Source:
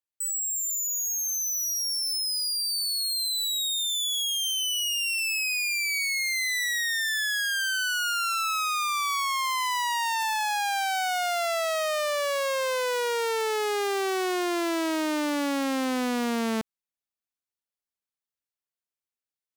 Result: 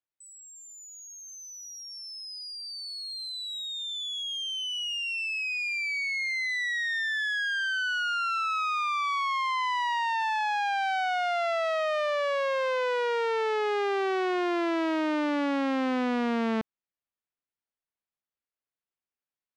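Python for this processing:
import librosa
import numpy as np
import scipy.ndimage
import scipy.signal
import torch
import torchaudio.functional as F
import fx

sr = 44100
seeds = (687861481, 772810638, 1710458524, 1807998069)

y = scipy.signal.sosfilt(scipy.signal.butter(2, 2800.0, 'lowpass', fs=sr, output='sos'), x)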